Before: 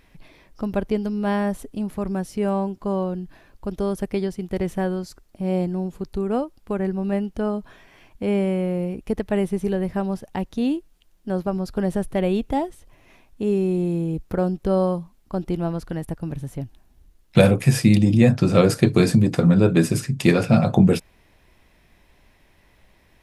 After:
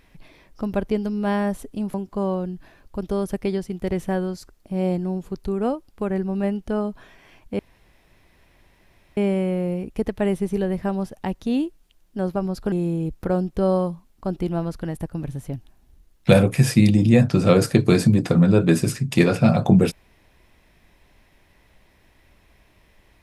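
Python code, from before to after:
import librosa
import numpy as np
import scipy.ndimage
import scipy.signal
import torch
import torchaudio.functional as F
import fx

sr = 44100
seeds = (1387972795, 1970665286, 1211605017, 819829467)

y = fx.edit(x, sr, fx.cut(start_s=1.94, length_s=0.69),
    fx.insert_room_tone(at_s=8.28, length_s=1.58),
    fx.cut(start_s=11.83, length_s=1.97), tone=tone)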